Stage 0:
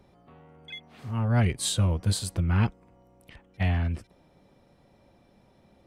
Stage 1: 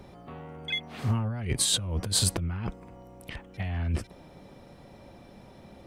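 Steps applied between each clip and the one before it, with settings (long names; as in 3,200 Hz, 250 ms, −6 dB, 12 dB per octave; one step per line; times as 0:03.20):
compressor whose output falls as the input rises −32 dBFS, ratio −1
level +3.5 dB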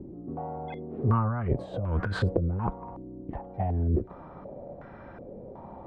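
in parallel at −7.5 dB: soft clipping −28 dBFS, distortion −9 dB
on the sum: low-pass on a step sequencer 2.7 Hz 320–1,500 Hz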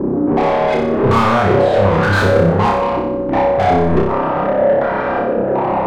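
mid-hump overdrive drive 37 dB, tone 1,300 Hz, clips at −10.5 dBFS
on a send: flutter between parallel walls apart 5.2 metres, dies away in 0.75 s
on the sum: level +3 dB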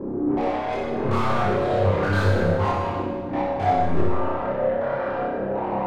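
multi-voice chorus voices 4, 0.51 Hz, delay 21 ms, depth 1.9 ms
on a send at −2.5 dB: convolution reverb RT60 1.5 s, pre-delay 37 ms
on the sum: level −8.5 dB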